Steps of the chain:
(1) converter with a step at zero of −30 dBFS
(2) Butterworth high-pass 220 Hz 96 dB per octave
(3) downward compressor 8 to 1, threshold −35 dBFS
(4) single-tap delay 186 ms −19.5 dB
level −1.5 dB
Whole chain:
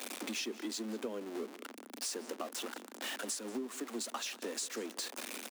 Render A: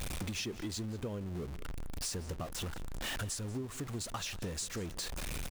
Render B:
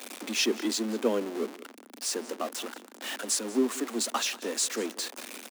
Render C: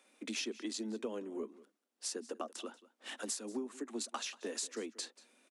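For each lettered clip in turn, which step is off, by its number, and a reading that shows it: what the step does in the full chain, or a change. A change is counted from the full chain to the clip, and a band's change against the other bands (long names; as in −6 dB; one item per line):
2, 500 Hz band −2.0 dB
3, average gain reduction 6.5 dB
1, distortion level −10 dB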